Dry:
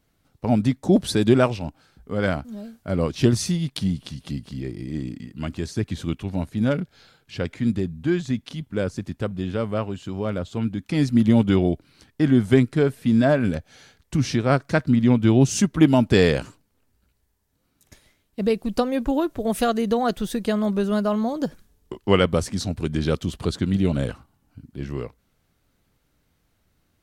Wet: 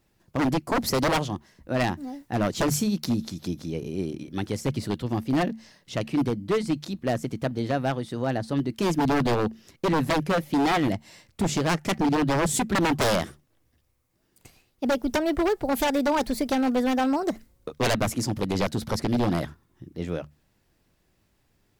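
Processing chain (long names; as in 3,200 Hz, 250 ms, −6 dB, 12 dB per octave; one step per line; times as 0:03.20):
mains-hum notches 60/120/180 Hz
speed change +24%
wave folding −17 dBFS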